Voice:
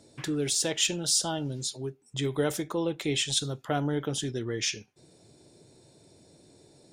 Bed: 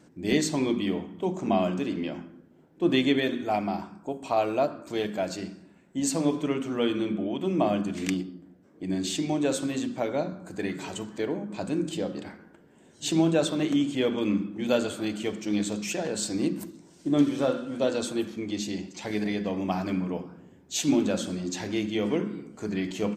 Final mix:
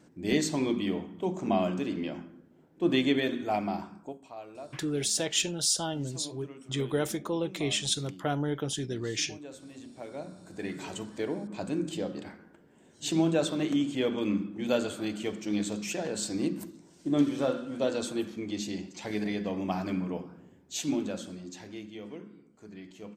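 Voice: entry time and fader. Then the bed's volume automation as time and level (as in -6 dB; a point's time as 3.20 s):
4.55 s, -1.5 dB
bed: 4.00 s -2.5 dB
4.32 s -19 dB
9.65 s -19 dB
10.82 s -3 dB
20.46 s -3 dB
22.15 s -16.5 dB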